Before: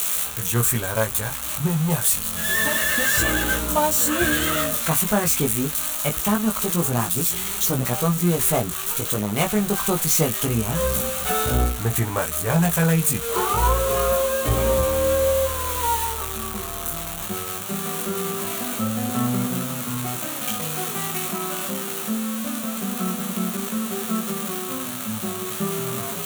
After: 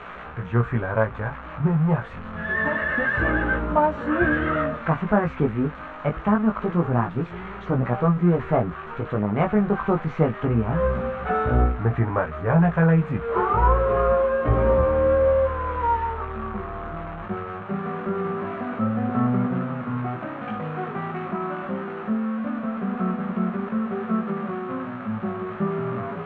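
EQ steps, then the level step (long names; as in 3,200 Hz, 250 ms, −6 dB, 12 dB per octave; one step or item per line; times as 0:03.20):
low-pass filter 1,800 Hz 24 dB per octave
+1.5 dB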